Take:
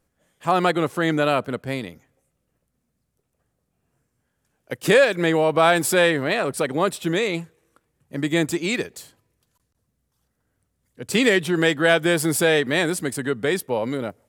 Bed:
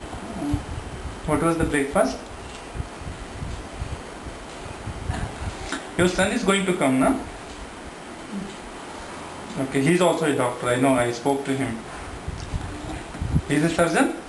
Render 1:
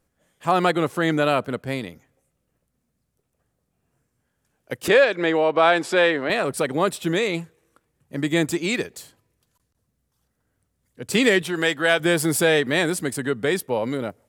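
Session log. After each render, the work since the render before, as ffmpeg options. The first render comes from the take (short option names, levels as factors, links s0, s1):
-filter_complex "[0:a]asettb=1/sr,asplit=3[s0][s1][s2];[s0]atrim=end=4.884[s3];[s1]atrim=start=4.88:end=6.3,asetpts=PTS-STARTPTS,afade=t=in:d=0.004:c=qsin,afade=t=out:st=1.416:d=0.004:c=qsin,highpass=260,lowpass=4500[s4];[s2]atrim=start=6.296[s5];[s3][s4]acrossfade=d=0.004:c1=hsin:c2=qsin[s6];[s6][s5]acrossfade=d=0.004:c1=qsin:c2=hsin,asettb=1/sr,asplit=3[s7][s8][s9];[s7]atrim=end=11.424[s10];[s8]atrim=start=11.42:end=12,asetpts=PTS-STARTPTS,afade=t=in:d=0.004:c=qsin,afade=t=out:st=0.576:d=0.004:c=qsin,lowshelf=f=410:g=-8.5[s11];[s9]atrim=start=11.996[s12];[s10][s11]acrossfade=d=0.004:c1=hsin:c2=qsin[s13];[s13][s12]acrossfade=d=0.004:c1=qsin:c2=hsin"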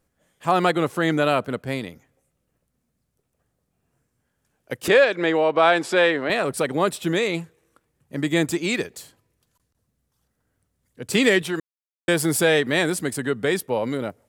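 -filter_complex "[0:a]asplit=3[s0][s1][s2];[s0]atrim=end=11.6,asetpts=PTS-STARTPTS,afade=t=out:st=11.596:d=0.004:c=hsin[s3];[s1]atrim=start=11.6:end=12.08,asetpts=PTS-STARTPTS,volume=0[s4];[s2]atrim=start=12.08,asetpts=PTS-STARTPTS,afade=t=in:d=0.004:c=hsin[s5];[s3][s4][s5]concat=n=3:v=0:a=1"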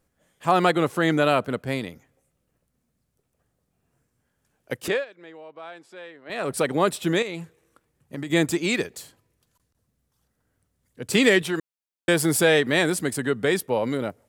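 -filter_complex "[0:a]asettb=1/sr,asplit=3[s0][s1][s2];[s0]atrim=end=7.224[s3];[s1]atrim=start=7.22:end=8.3,asetpts=PTS-STARTPTS,afade=t=in:d=0.004:c=qsin,afade=t=out:st=1.076:d=0.004:c=qsin,acompressor=threshold=0.0398:ratio=6:attack=3.2:release=140:knee=1:detection=peak[s4];[s2]atrim=start=8.296[s5];[s3][s4]acrossfade=d=0.004:c1=hsin:c2=qsin[s6];[s6][s5]acrossfade=d=0.004:c1=qsin:c2=hsin,asplit=3[s7][s8][s9];[s7]atrim=end=5.05,asetpts=PTS-STARTPTS,afade=t=out:st=4.74:d=0.31:silence=0.0668344[s10];[s8]atrim=start=5.05:end=6.25,asetpts=PTS-STARTPTS,volume=0.0668[s11];[s9]atrim=start=6.25,asetpts=PTS-STARTPTS,afade=t=in:d=0.31:silence=0.0668344[s12];[s10][s11][s12]concat=n=3:v=0:a=1"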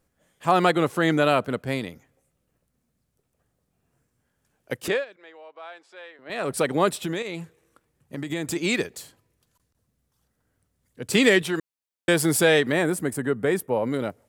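-filter_complex "[0:a]asettb=1/sr,asplit=3[s0][s1][s2];[s0]atrim=end=5.164[s3];[s1]atrim=start=5.16:end=6.19,asetpts=PTS-STARTPTS,afade=t=in:d=0.004:c=qsin,afade=t=out:st=1.026:d=0.004:c=qsin,highpass=520,lowpass=7000[s4];[s2]atrim=start=6.186[s5];[s3][s4]acrossfade=d=0.004:c1=hsin:c2=qsin[s6];[s6][s5]acrossfade=d=0.004:c1=qsin:c2=hsin,asplit=3[s7][s8][s9];[s7]afade=t=out:st=7.03:d=0.02[s10];[s8]acompressor=threshold=0.0631:ratio=6:attack=3.2:release=140:knee=1:detection=peak,afade=t=in:st=7.03:d=0.02,afade=t=out:st=8.55:d=0.02[s11];[s9]afade=t=in:st=8.55:d=0.02[s12];[s10][s11][s12]amix=inputs=3:normalize=0,asettb=1/sr,asplit=3[s13][s14][s15];[s13]atrim=end=12.724[s16];[s14]atrim=start=12.72:end=13.94,asetpts=PTS-STARTPTS,afade=t=in:d=0.004:c=qsin,afade=t=out:st=1.216:d=0.004:c=qsin,equalizer=f=4200:t=o:w=1.6:g=-11.5[s17];[s15]atrim=start=13.936[s18];[s16][s17]acrossfade=d=0.004:c1=hsin:c2=qsin[s19];[s19][s18]acrossfade=d=0.004:c1=qsin:c2=hsin"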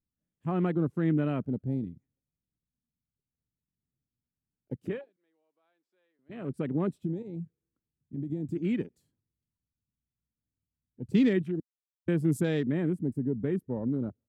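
-af "afwtdn=0.0316,firequalizer=gain_entry='entry(240,0);entry(500,-14);entry(730,-18)':delay=0.05:min_phase=1"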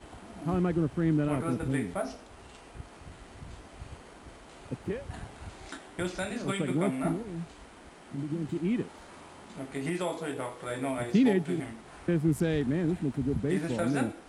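-filter_complex "[1:a]volume=0.211[s0];[0:a][s0]amix=inputs=2:normalize=0"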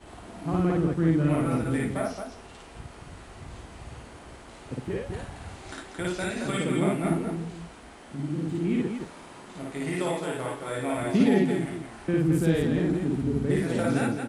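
-filter_complex "[0:a]asplit=2[s0][s1];[s1]adelay=47,volume=0.211[s2];[s0][s2]amix=inputs=2:normalize=0,aecho=1:1:55.39|221.6:1|0.562"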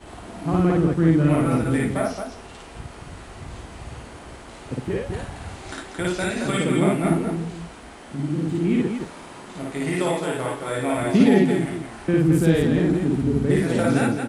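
-af "volume=1.88"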